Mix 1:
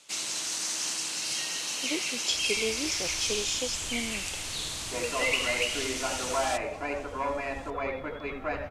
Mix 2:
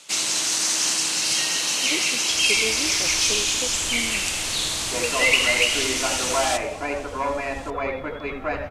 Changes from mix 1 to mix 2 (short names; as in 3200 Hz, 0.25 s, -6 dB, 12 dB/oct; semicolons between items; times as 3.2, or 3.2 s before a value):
first sound +8.0 dB; second sound +5.5 dB; reverb: on, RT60 2.8 s